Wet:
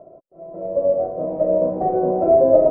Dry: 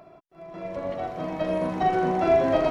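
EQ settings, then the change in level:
low-pass with resonance 550 Hz, resonance Q 6.5
high-frequency loss of the air 110 metres
0.0 dB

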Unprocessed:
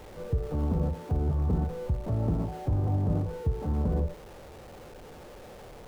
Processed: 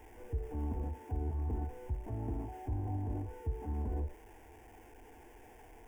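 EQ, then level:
notch filter 390 Hz, Q 13
phaser with its sweep stopped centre 830 Hz, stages 8
−5.5 dB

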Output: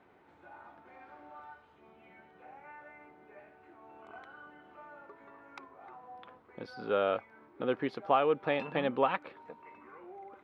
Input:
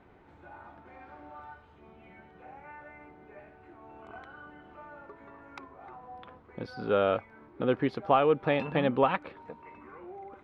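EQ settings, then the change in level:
high-pass filter 300 Hz 6 dB per octave
−2.5 dB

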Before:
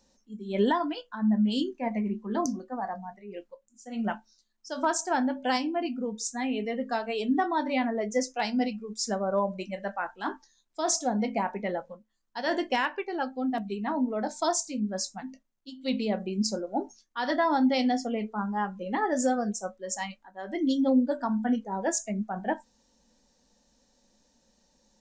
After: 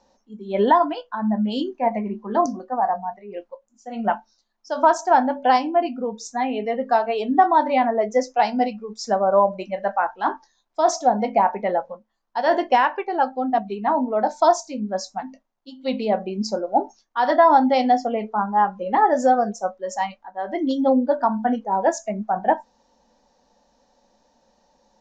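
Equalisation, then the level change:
low-pass filter 6,400 Hz 24 dB per octave
parametric band 800 Hz +13.5 dB 1.7 octaves
0.0 dB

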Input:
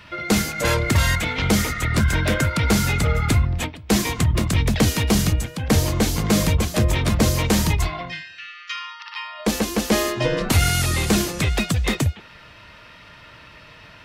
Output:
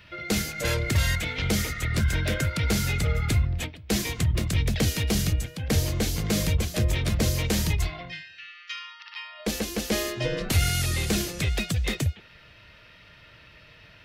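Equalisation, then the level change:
dynamic equaliser 7,800 Hz, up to +5 dB, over −42 dBFS, Q 0.98
graphic EQ with 10 bands 250 Hz −5 dB, 1,000 Hz −9 dB, 8,000 Hz −7 dB
−4.0 dB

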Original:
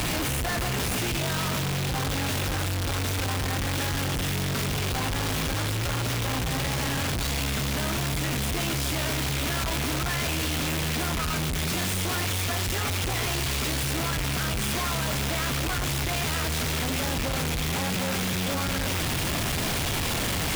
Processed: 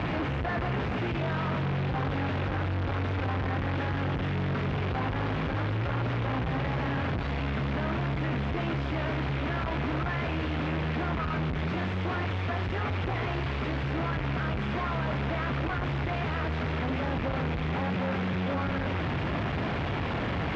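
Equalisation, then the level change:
high-pass filter 61 Hz
low-pass filter 2,100 Hz 12 dB per octave
high-frequency loss of the air 130 metres
0.0 dB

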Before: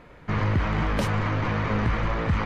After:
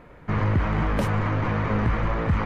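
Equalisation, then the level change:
parametric band 4,600 Hz −7 dB 1.9 octaves
+1.5 dB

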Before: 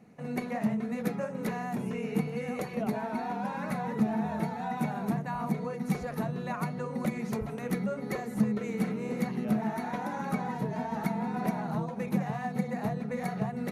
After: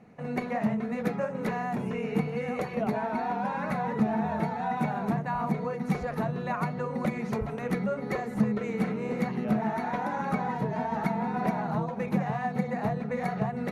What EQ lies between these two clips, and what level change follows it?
low-pass filter 2,300 Hz 6 dB per octave
parametric band 230 Hz −5 dB 2 octaves
+6.0 dB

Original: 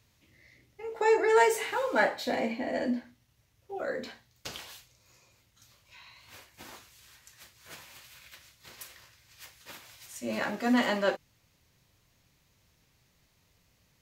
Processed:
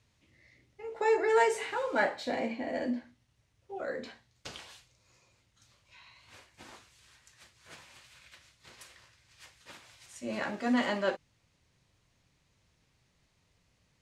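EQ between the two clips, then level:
high-frequency loss of the air 72 metres
parametric band 9,200 Hz +7 dB 0.67 octaves
−2.5 dB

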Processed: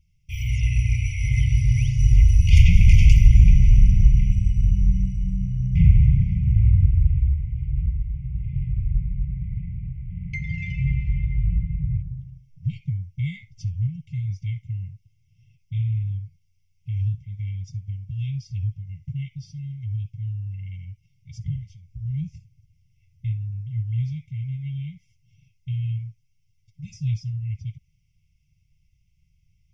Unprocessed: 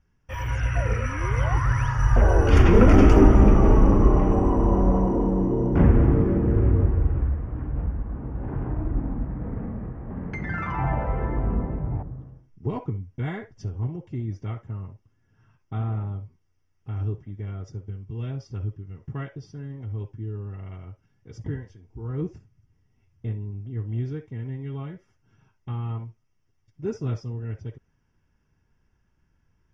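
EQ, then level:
linear-phase brick-wall band-stop 180–2,000 Hz
+4.0 dB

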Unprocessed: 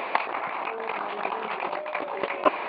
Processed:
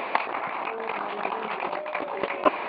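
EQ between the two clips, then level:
low-shelf EQ 120 Hz +5.5 dB
parametric band 240 Hz +2 dB
0.0 dB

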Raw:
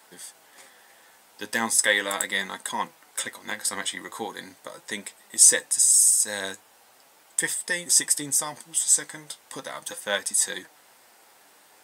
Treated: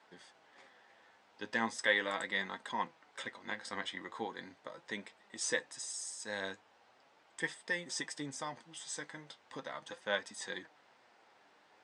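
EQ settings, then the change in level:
Butterworth low-pass 11,000 Hz 96 dB per octave
high-frequency loss of the air 180 metres
−6.5 dB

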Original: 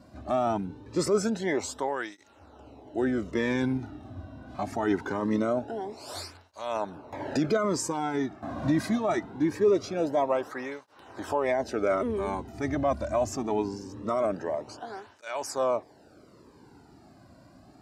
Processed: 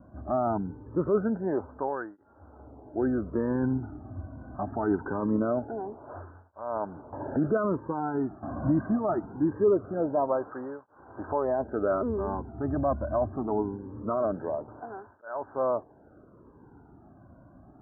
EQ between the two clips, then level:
Butterworth low-pass 1,600 Hz 96 dB per octave
high-frequency loss of the air 280 metres
low-shelf EQ 83 Hz +7 dB
0.0 dB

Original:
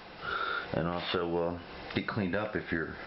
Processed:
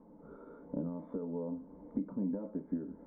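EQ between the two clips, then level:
formant resonators in series u
phaser with its sweep stopped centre 520 Hz, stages 8
+8.0 dB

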